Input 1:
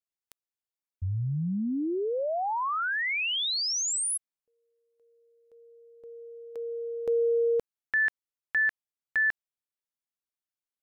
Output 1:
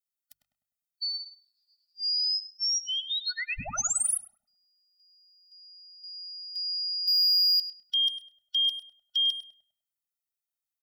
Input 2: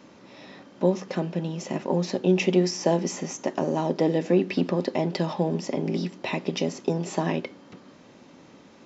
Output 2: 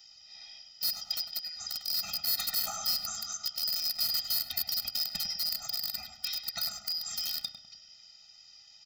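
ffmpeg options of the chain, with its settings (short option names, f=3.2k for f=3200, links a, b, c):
-filter_complex "[0:a]afftfilt=real='real(if(lt(b,272),68*(eq(floor(b/68),0)*3+eq(floor(b/68),1)*2+eq(floor(b/68),2)*1+eq(floor(b/68),3)*0)+mod(b,68),b),0)':imag='imag(if(lt(b,272),68*(eq(floor(b/68),0)*3+eq(floor(b/68),1)*2+eq(floor(b/68),2)*1+eq(floor(b/68),3)*0)+mod(b,68),b),0)':win_size=2048:overlap=0.75,equalizer=f=360:t=o:w=1.6:g=-10.5,bandreject=f=50:t=h:w=6,bandreject=f=100:t=h:w=6,bandreject=f=150:t=h:w=6,acrossover=split=390|3000[a][b][c];[c]alimiter=limit=-20dB:level=0:latency=1:release=95[d];[a][b][d]amix=inputs=3:normalize=0,asplit=2[e][f];[f]adelay=130,highpass=300,lowpass=3.4k,asoftclip=type=hard:threshold=-25dB,volume=-18dB[g];[e][g]amix=inputs=2:normalize=0,aeval=exprs='(mod(9.44*val(0)+1,2)-1)/9.44':c=same,crystalizer=i=1.5:c=0,asoftclip=type=hard:threshold=-19dB,asplit=2[h][i];[i]adelay=101,lowpass=f=1.6k:p=1,volume=-5dB,asplit=2[j][k];[k]adelay=101,lowpass=f=1.6k:p=1,volume=0.47,asplit=2[l][m];[m]adelay=101,lowpass=f=1.6k:p=1,volume=0.47,asplit=2[n][o];[o]adelay=101,lowpass=f=1.6k:p=1,volume=0.47,asplit=2[p][q];[q]adelay=101,lowpass=f=1.6k:p=1,volume=0.47,asplit=2[r][s];[s]adelay=101,lowpass=f=1.6k:p=1,volume=0.47[t];[j][l][n][p][r][t]amix=inputs=6:normalize=0[u];[h][u]amix=inputs=2:normalize=0,afftfilt=real='re*eq(mod(floor(b*sr/1024/300),2),0)':imag='im*eq(mod(floor(b*sr/1024/300),2),0)':win_size=1024:overlap=0.75,volume=-2.5dB"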